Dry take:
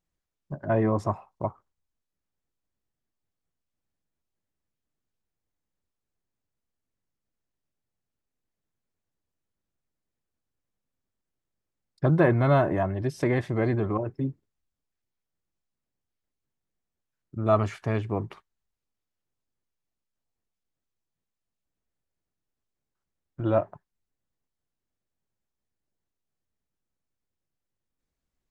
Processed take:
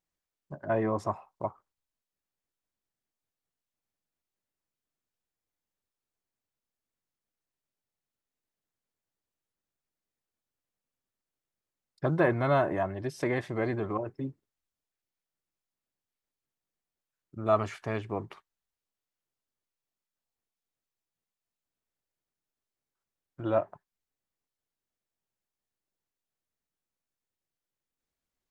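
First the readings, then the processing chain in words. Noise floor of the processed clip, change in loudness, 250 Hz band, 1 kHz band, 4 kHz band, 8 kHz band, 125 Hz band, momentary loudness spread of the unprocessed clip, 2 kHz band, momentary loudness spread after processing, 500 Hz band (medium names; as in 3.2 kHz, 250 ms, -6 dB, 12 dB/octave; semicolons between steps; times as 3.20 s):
under -85 dBFS, -4.5 dB, -5.5 dB, -2.0 dB, -1.5 dB, no reading, -8.5 dB, 13 LU, -1.5 dB, 14 LU, -3.0 dB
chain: bass shelf 250 Hz -9 dB; trim -1.5 dB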